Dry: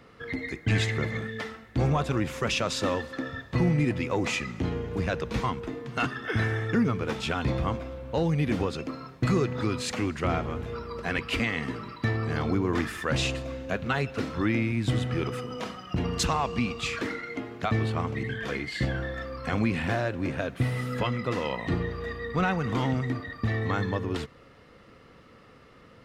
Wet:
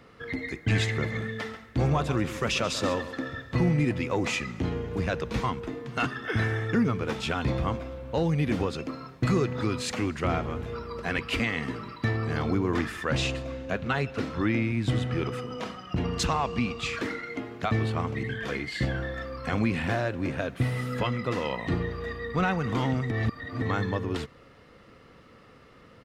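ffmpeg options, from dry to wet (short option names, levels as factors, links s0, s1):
-filter_complex "[0:a]asplit=3[s0][s1][s2];[s0]afade=t=out:st=1.17:d=0.02[s3];[s1]aecho=1:1:136:0.224,afade=t=in:st=1.17:d=0.02,afade=t=out:st=3.54:d=0.02[s4];[s2]afade=t=in:st=3.54:d=0.02[s5];[s3][s4][s5]amix=inputs=3:normalize=0,asettb=1/sr,asplit=3[s6][s7][s8];[s6]atrim=end=12.774[s9];[s7]atrim=start=12.77:end=16.94,asetpts=PTS-STARTPTS,afade=t=in:d=0.004:c=qsin,afade=t=out:st=4.166:d=0.004:c=qsin,highshelf=f=8400:g=-6.5[s10];[s8]atrim=start=16.936[s11];[s9][s10]acrossfade=d=0.004:c1=hsin:c2=qsin[s12];[s12][s11]acrossfade=d=0.004:c1=qsin:c2=hsin,asplit=3[s13][s14][s15];[s13]atrim=end=23.112[s16];[s14]atrim=start=23.108:end=23.622,asetpts=PTS-STARTPTS,areverse[s17];[s15]atrim=start=23.618[s18];[s16][s17]acrossfade=d=0.004:c1=hsin:c2=hsin[s19];[s19][s18]acrossfade=d=0.004:c1=hsin:c2=hsin"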